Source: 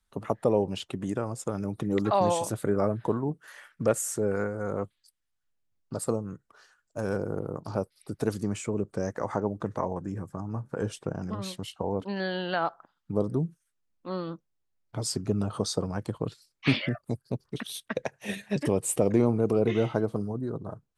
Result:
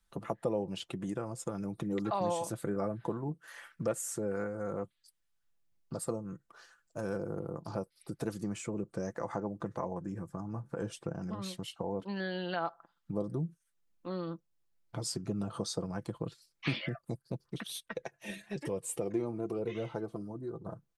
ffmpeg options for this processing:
-filter_complex "[0:a]asettb=1/sr,asplit=3[a][b][c];[a]atrim=end=17.804[d];[b]atrim=start=17.8:end=20.66,asetpts=PTS-STARTPTS,afade=t=in:d=0.004:c=qsin,afade=t=out:st=2.856:d=0.004:c=qsin,flanger=delay=1.7:depth=1.7:regen=45:speed=1:shape=triangular[e];[c]atrim=start=20.656[f];[d][e]acrossfade=d=0.004:c1=hsin:c2=qsin[g];[g][f]acrossfade=d=0.004:c1=qsin:c2=hsin,aecho=1:1:5.9:0.41,acompressor=threshold=-45dB:ratio=1.5"

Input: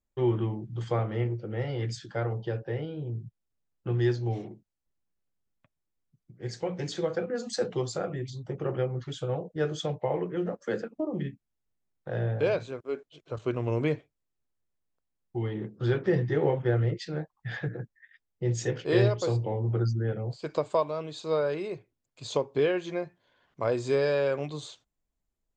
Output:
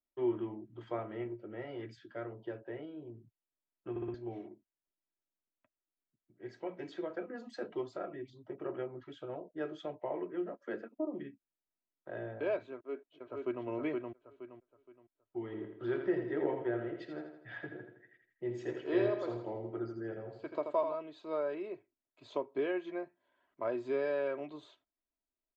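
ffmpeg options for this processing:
-filter_complex "[0:a]asettb=1/sr,asplit=3[a][b][c];[a]atrim=end=1.894[d];[b]atrim=start=1.89:end=2.42,asetpts=PTS-STARTPTS,afade=t=in:d=0.004:c=qsin,afade=t=out:st=0.526:d=0.004:c=qsin,equalizer=f=840:t=o:w=0.77:g=-7.5[e];[c]atrim=start=2.416[f];[d][e]acrossfade=d=0.004:c1=hsin:c2=qsin[g];[g][f]acrossfade=d=0.004:c1=qsin:c2=hsin,asplit=2[h][i];[i]afade=t=in:st=12.73:d=0.01,afade=t=out:st=13.65:d=0.01,aecho=0:1:470|940|1410|1880:0.794328|0.238298|0.0714895|0.0214469[j];[h][j]amix=inputs=2:normalize=0,asplit=3[k][l][m];[k]afade=t=out:st=15.5:d=0.02[n];[l]aecho=1:1:82|164|246|328|410|492:0.447|0.21|0.0987|0.0464|0.0218|0.0102,afade=t=in:st=15.5:d=0.02,afade=t=out:st=20.94:d=0.02[o];[m]afade=t=in:st=20.94:d=0.02[p];[n][o][p]amix=inputs=3:normalize=0,asplit=5[q][r][s][t][u];[q]atrim=end=3.962[v];[r]atrim=start=3.898:end=3.962[w];[s]atrim=start=3.898:end=3.962[x];[t]atrim=start=3.898:end=3.962[y];[u]atrim=start=4.138[z];[v][w]acrossfade=d=0.004:c1=hsin:c2=hsin[aa];[aa][x]acrossfade=d=0.004:c1=hsin:c2=hsin[ab];[ab][y]acrossfade=d=0.004:c1=hsin:c2=hsin[ac];[ac][z]acrossfade=d=0.004:c1=hsin:c2=hsin,acrossover=split=190 3000:gain=0.2 1 0.0708[ad][ae][af];[ad][ae][af]amix=inputs=3:normalize=0,aecho=1:1:3.1:0.58,volume=-8dB"

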